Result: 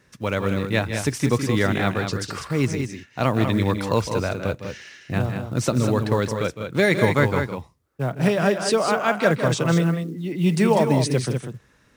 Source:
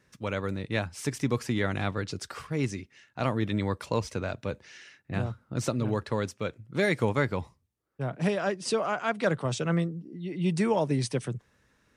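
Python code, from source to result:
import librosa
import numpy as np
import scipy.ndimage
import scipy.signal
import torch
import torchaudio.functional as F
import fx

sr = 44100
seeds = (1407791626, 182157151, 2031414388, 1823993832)

y = fx.echo_multitap(x, sr, ms=(159, 196), db=(-11.0, -7.0))
y = fx.quant_float(y, sr, bits=4)
y = F.gain(torch.from_numpy(y), 7.0).numpy()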